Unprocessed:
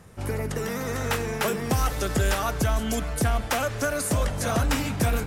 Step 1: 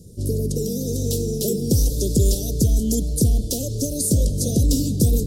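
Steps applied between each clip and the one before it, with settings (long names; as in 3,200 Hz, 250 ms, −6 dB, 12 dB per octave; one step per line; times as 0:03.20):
inverse Chebyshev band-stop filter 960–2,100 Hz, stop band 60 dB
level +7 dB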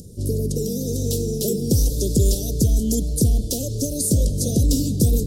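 upward compression, threshold −36 dBFS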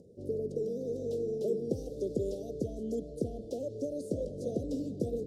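resonant band-pass 550 Hz, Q 1.6
level −4 dB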